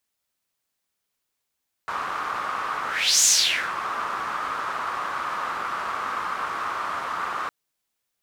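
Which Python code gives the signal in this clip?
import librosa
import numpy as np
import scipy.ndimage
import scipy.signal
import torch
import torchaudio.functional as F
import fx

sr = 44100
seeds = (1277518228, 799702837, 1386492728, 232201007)

y = fx.whoosh(sr, seeds[0], length_s=5.61, peak_s=1.36, rise_s=0.4, fall_s=0.52, ends_hz=1200.0, peak_hz=6800.0, q=4.5, swell_db=12)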